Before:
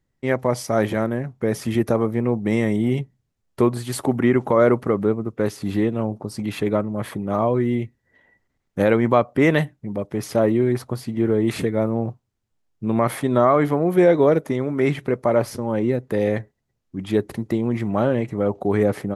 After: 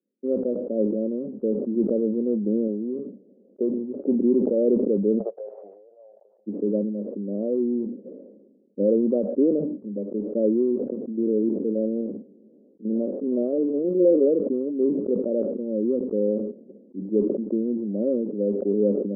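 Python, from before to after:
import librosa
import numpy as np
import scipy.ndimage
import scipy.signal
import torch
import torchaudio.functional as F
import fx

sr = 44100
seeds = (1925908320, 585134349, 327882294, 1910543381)

y = fx.low_shelf(x, sr, hz=280.0, db=-10.5, at=(2.67, 3.71))
y = fx.ellip_highpass(y, sr, hz=700.0, order=4, stop_db=60, at=(5.17, 6.46), fade=0.02)
y = fx.spec_steps(y, sr, hold_ms=50, at=(11.02, 14.27))
y = scipy.signal.sosfilt(scipy.signal.cheby1(4, 1.0, [200.0, 550.0], 'bandpass', fs=sr, output='sos'), y)
y = fx.sustainer(y, sr, db_per_s=44.0)
y = F.gain(torch.from_numpy(y), -2.0).numpy()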